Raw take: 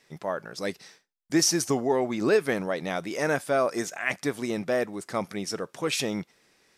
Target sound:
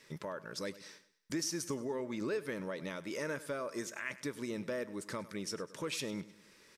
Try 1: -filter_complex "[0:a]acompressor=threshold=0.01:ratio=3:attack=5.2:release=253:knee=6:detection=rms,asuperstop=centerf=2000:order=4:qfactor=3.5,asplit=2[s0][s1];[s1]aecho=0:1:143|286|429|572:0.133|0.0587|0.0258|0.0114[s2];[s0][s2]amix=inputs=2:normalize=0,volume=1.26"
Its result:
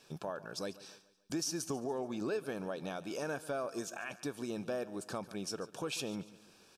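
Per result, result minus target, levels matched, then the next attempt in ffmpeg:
echo 42 ms late; 2 kHz band -3.0 dB
-filter_complex "[0:a]acompressor=threshold=0.01:ratio=3:attack=5.2:release=253:knee=6:detection=rms,asuperstop=centerf=2000:order=4:qfactor=3.5,asplit=2[s0][s1];[s1]aecho=0:1:101|202|303|404:0.133|0.0587|0.0258|0.0114[s2];[s0][s2]amix=inputs=2:normalize=0,volume=1.26"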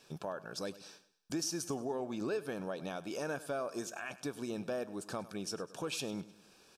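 2 kHz band -3.0 dB
-filter_complex "[0:a]acompressor=threshold=0.01:ratio=3:attack=5.2:release=253:knee=6:detection=rms,asuperstop=centerf=740:order=4:qfactor=3.5,asplit=2[s0][s1];[s1]aecho=0:1:101|202|303|404:0.133|0.0587|0.0258|0.0114[s2];[s0][s2]amix=inputs=2:normalize=0,volume=1.26"

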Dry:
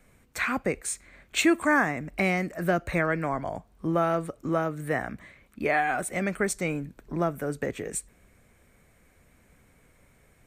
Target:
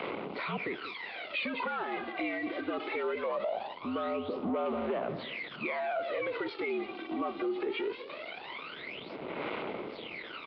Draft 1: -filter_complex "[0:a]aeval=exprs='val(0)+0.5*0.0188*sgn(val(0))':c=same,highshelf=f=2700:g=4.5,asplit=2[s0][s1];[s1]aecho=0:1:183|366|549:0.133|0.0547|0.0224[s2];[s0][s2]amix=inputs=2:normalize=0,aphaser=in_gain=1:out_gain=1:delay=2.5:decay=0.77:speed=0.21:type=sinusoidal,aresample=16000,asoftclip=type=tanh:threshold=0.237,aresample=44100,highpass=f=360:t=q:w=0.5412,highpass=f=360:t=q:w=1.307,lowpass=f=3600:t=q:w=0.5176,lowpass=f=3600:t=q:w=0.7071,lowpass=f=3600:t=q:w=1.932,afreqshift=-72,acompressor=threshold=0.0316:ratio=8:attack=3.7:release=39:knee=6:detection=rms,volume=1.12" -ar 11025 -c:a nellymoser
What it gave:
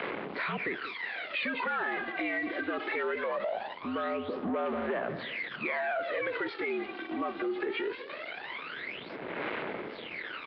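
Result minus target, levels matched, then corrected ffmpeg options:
2 kHz band +3.0 dB
-filter_complex "[0:a]aeval=exprs='val(0)+0.5*0.0188*sgn(val(0))':c=same,highshelf=f=2700:g=4.5,asplit=2[s0][s1];[s1]aecho=0:1:183|366|549:0.133|0.0547|0.0224[s2];[s0][s2]amix=inputs=2:normalize=0,aphaser=in_gain=1:out_gain=1:delay=2.5:decay=0.77:speed=0.21:type=sinusoidal,aresample=16000,asoftclip=type=tanh:threshold=0.237,aresample=44100,highpass=f=360:t=q:w=0.5412,highpass=f=360:t=q:w=1.307,lowpass=f=3600:t=q:w=0.5176,lowpass=f=3600:t=q:w=0.7071,lowpass=f=3600:t=q:w=1.932,afreqshift=-72,acompressor=threshold=0.0316:ratio=8:attack=3.7:release=39:knee=6:detection=rms,equalizer=f=1700:t=o:w=0.36:g=-12,volume=1.12" -ar 11025 -c:a nellymoser

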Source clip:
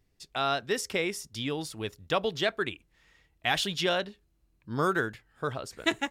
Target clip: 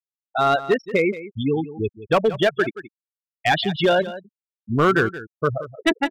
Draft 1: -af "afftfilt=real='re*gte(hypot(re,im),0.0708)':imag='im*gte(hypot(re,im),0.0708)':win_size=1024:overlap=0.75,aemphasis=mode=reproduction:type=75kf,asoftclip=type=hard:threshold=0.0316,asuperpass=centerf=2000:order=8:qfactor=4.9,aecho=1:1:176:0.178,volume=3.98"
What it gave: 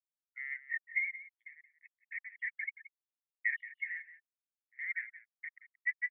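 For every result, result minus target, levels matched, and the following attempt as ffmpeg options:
2 kHz band +6.5 dB; hard clipper: distortion +8 dB
-af "afftfilt=real='re*gte(hypot(re,im),0.0708)':imag='im*gte(hypot(re,im),0.0708)':win_size=1024:overlap=0.75,aemphasis=mode=reproduction:type=75kf,asoftclip=type=hard:threshold=0.0316,aecho=1:1:176:0.178,volume=3.98"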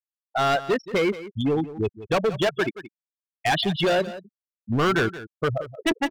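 hard clipper: distortion +8 dB
-af "afftfilt=real='re*gte(hypot(re,im),0.0708)':imag='im*gte(hypot(re,im),0.0708)':win_size=1024:overlap=0.75,aemphasis=mode=reproduction:type=75kf,asoftclip=type=hard:threshold=0.0668,aecho=1:1:176:0.178,volume=3.98"

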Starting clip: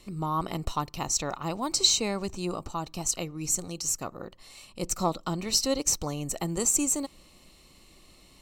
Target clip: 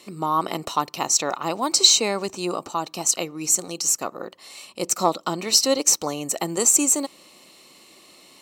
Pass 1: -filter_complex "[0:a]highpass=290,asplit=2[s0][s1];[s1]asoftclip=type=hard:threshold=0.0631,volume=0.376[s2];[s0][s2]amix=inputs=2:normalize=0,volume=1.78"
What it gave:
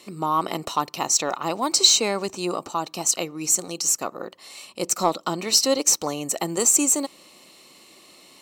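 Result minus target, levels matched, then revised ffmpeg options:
hard clipper: distortion +12 dB
-filter_complex "[0:a]highpass=290,asplit=2[s0][s1];[s1]asoftclip=type=hard:threshold=0.178,volume=0.376[s2];[s0][s2]amix=inputs=2:normalize=0,volume=1.78"

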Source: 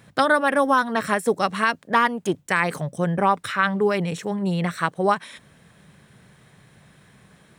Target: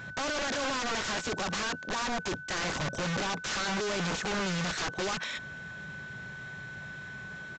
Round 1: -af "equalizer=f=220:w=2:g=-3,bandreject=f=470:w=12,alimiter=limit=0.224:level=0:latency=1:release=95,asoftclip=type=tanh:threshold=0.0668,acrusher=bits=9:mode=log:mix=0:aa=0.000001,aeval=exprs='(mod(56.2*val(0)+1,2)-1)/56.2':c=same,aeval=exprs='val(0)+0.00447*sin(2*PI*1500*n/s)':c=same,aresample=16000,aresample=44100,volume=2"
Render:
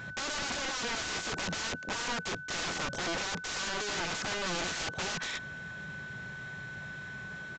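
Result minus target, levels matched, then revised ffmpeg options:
saturation: distortion -6 dB
-af "equalizer=f=220:w=2:g=-3,bandreject=f=470:w=12,alimiter=limit=0.224:level=0:latency=1:release=95,asoftclip=type=tanh:threshold=0.0211,acrusher=bits=9:mode=log:mix=0:aa=0.000001,aeval=exprs='(mod(56.2*val(0)+1,2)-1)/56.2':c=same,aeval=exprs='val(0)+0.00447*sin(2*PI*1500*n/s)':c=same,aresample=16000,aresample=44100,volume=2"

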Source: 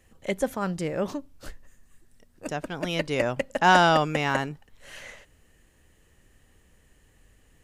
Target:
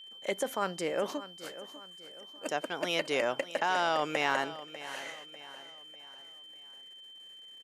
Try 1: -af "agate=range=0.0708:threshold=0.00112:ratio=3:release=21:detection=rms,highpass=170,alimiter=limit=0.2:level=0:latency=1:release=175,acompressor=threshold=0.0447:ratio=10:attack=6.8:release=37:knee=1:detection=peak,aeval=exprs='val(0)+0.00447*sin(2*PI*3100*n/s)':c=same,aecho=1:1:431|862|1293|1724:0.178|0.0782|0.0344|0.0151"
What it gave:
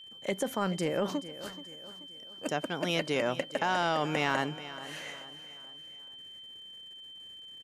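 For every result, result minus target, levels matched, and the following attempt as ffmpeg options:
125 Hz band +10.5 dB; echo 165 ms early
-af "agate=range=0.0708:threshold=0.00112:ratio=3:release=21:detection=rms,highpass=380,alimiter=limit=0.2:level=0:latency=1:release=175,acompressor=threshold=0.0447:ratio=10:attack=6.8:release=37:knee=1:detection=peak,aeval=exprs='val(0)+0.00447*sin(2*PI*3100*n/s)':c=same,aecho=1:1:431|862|1293|1724:0.178|0.0782|0.0344|0.0151"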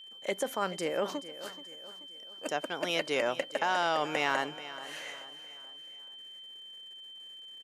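echo 165 ms early
-af "agate=range=0.0708:threshold=0.00112:ratio=3:release=21:detection=rms,highpass=380,alimiter=limit=0.2:level=0:latency=1:release=175,acompressor=threshold=0.0447:ratio=10:attack=6.8:release=37:knee=1:detection=peak,aeval=exprs='val(0)+0.00447*sin(2*PI*3100*n/s)':c=same,aecho=1:1:596|1192|1788|2384:0.178|0.0782|0.0344|0.0151"

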